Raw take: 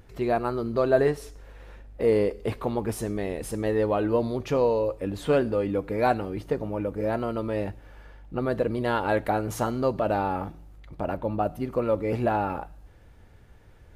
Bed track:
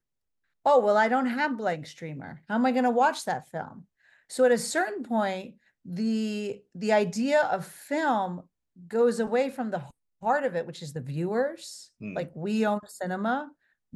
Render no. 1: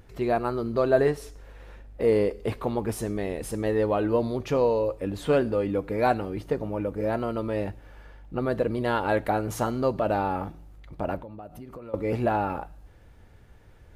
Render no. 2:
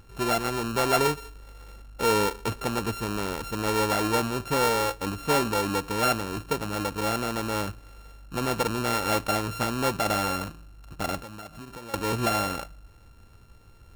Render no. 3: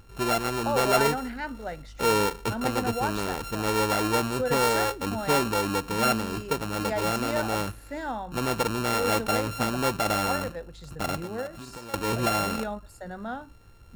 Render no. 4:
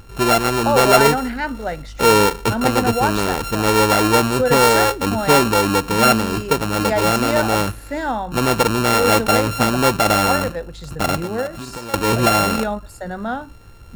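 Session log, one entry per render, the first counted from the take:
0:11.18–0:11.94: downward compressor 8 to 1, threshold −38 dBFS
samples sorted by size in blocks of 32 samples; soft clipping −15 dBFS, distortion −20 dB
mix in bed track −7.5 dB
level +10 dB; brickwall limiter −3 dBFS, peak gain reduction 1 dB

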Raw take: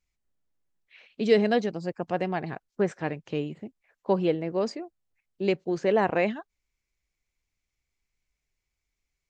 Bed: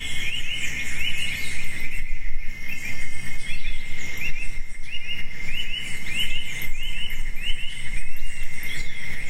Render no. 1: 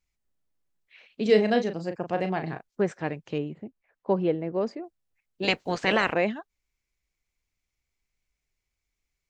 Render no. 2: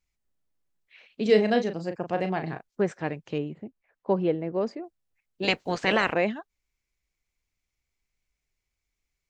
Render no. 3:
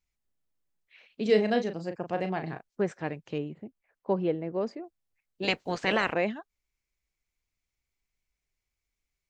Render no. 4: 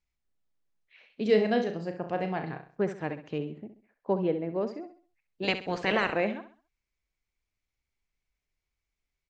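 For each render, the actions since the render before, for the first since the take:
0:01.22–0:02.69: double-tracking delay 37 ms −8 dB; 0:03.38–0:04.84: low-pass filter 1,700 Hz 6 dB per octave; 0:05.42–0:06.12: ceiling on every frequency bin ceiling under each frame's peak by 23 dB
no processing that can be heard
level −3 dB
high-frequency loss of the air 71 metres; repeating echo 66 ms, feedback 35%, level −11 dB

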